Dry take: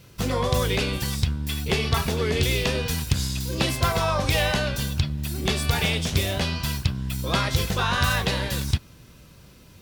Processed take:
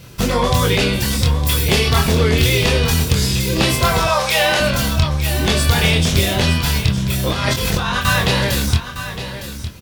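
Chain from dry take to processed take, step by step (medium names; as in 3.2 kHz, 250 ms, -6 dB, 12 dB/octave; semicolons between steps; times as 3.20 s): 1.23–1.88 s: treble shelf 6.9 kHz +8.5 dB; 4.07–4.60 s: inverse Chebyshev high-pass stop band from 190 Hz, stop band 50 dB; in parallel at +2.5 dB: peak limiter -18 dBFS, peak gain reduction 9.5 dB; 7.29–8.05 s: on the sum: compressor with a negative ratio -21 dBFS, ratio -0.5; doubling 25 ms -4 dB; delay 910 ms -11 dB; trim +1.5 dB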